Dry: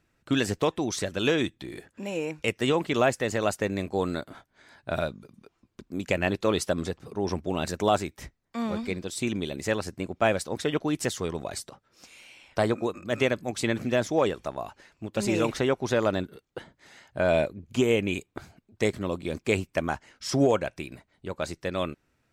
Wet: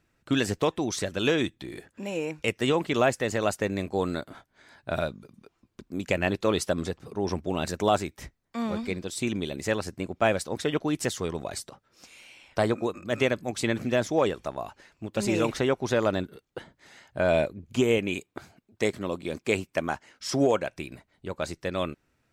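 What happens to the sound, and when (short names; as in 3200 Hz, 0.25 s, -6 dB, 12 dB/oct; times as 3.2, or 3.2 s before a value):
17.98–20.72 low shelf 96 Hz -11 dB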